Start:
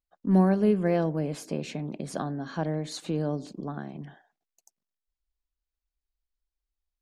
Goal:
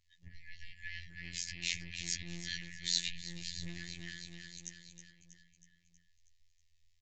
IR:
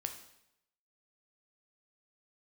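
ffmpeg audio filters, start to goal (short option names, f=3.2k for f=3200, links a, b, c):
-filter_complex "[0:a]aecho=1:1:320|640|960|1280|1600|1920:0.316|0.177|0.0992|0.0555|0.0311|0.0174,acompressor=threshold=-34dB:ratio=6,asplit=2[a][b];[b]alimiter=level_in=11dB:limit=-24dB:level=0:latency=1:release=330,volume=-11dB,volume=1dB[c];[a][c]amix=inputs=2:normalize=0,asoftclip=type=tanh:threshold=-29.5dB,afftfilt=real='re*(1-between(b*sr/4096,150,1700))':imag='im*(1-between(b*sr/4096,150,1700))':win_size=4096:overlap=0.75,afftfilt=real='hypot(re,im)*cos(PI*b)':imag='0':win_size=2048:overlap=0.75,acrossover=split=1600[d][e];[d]aeval=exprs='max(val(0),0)':c=same[f];[f][e]amix=inputs=2:normalize=0,aresample=16000,aresample=44100,volume=12.5dB"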